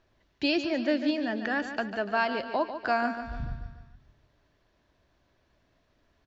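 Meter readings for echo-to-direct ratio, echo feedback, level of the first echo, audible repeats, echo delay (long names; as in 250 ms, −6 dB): −8.5 dB, 51%, −10.0 dB, 5, 146 ms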